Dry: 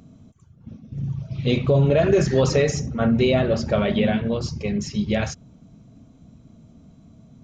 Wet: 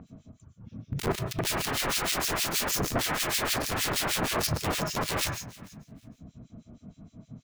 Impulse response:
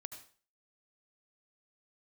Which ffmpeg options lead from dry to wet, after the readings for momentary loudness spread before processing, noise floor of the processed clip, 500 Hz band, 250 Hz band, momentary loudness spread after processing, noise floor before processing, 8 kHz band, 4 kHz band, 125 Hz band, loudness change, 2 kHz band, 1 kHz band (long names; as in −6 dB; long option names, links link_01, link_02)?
12 LU, −65 dBFS, −14.0 dB, −13.0 dB, 12 LU, −52 dBFS, can't be measured, +3.0 dB, −12.5 dB, −6.5 dB, 0.0 dB, +0.5 dB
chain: -filter_complex "[0:a]aeval=exprs='(mod(15*val(0)+1,2)-1)/15':channel_layout=same,aecho=1:1:401|802:0.0794|0.0159[link_01];[1:a]atrim=start_sample=2205[link_02];[link_01][link_02]afir=irnorm=-1:irlink=0,acrossover=split=2000[link_03][link_04];[link_03]aeval=exprs='val(0)*(1-1/2+1/2*cos(2*PI*6.4*n/s))':channel_layout=same[link_05];[link_04]aeval=exprs='val(0)*(1-1/2-1/2*cos(2*PI*6.4*n/s))':channel_layout=same[link_06];[link_05][link_06]amix=inputs=2:normalize=0,volume=8dB"